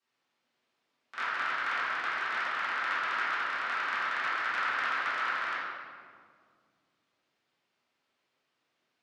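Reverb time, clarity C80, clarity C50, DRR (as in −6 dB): 2.0 s, −0.5 dB, −3.0 dB, −14.0 dB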